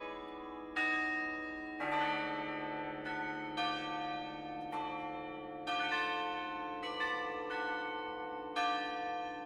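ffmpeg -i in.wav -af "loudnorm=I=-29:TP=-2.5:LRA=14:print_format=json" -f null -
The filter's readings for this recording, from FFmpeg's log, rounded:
"input_i" : "-38.1",
"input_tp" : "-21.8",
"input_lra" : "1.6",
"input_thresh" : "-48.1",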